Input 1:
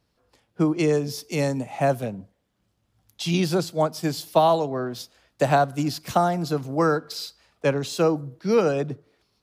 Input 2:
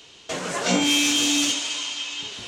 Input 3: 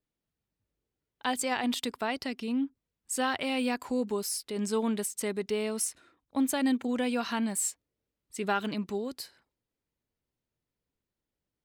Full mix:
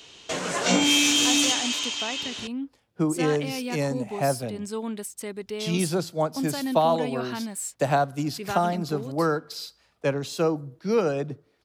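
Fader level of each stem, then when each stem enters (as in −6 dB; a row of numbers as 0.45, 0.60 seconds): −3.0, 0.0, −2.5 decibels; 2.40, 0.00, 0.00 seconds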